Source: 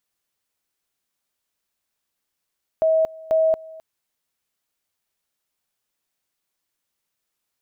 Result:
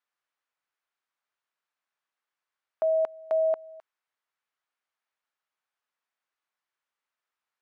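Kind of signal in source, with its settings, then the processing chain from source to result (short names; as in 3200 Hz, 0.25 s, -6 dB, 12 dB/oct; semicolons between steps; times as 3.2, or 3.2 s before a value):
two-level tone 641 Hz -14.5 dBFS, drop 22 dB, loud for 0.23 s, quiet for 0.26 s, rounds 2
band-pass 1300 Hz, Q 1.1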